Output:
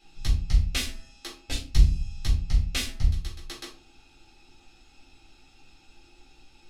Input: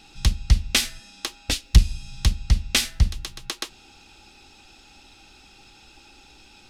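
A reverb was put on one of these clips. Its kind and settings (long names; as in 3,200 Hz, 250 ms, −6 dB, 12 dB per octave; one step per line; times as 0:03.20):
rectangular room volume 210 cubic metres, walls furnished, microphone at 4 metres
level −15.5 dB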